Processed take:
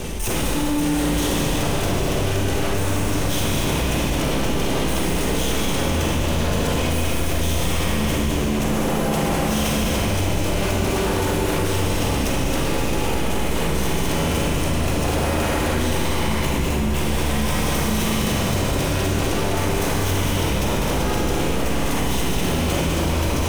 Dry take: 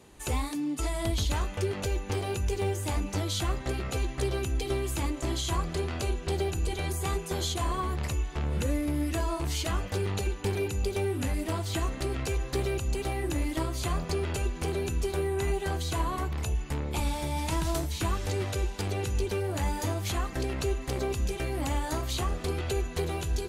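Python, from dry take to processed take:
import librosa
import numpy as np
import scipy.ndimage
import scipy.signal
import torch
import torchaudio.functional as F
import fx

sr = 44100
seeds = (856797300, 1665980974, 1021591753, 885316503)

p1 = fx.lower_of_two(x, sr, delay_ms=0.35)
p2 = fx.low_shelf(p1, sr, hz=67.0, db=12.0)
p3 = fx.hum_notches(p2, sr, base_hz=50, count=8)
p4 = 10.0 ** (-30.0 / 20.0) * (np.abs((p3 / 10.0 ** (-30.0 / 20.0) + 3.0) % 4.0 - 2.0) - 1.0)
p5 = p4 + fx.echo_single(p4, sr, ms=200, db=-5.0, dry=0)
p6 = fx.rev_schroeder(p5, sr, rt60_s=3.1, comb_ms=33, drr_db=-3.5)
p7 = fx.env_flatten(p6, sr, amount_pct=70)
y = p7 * 10.0 ** (4.5 / 20.0)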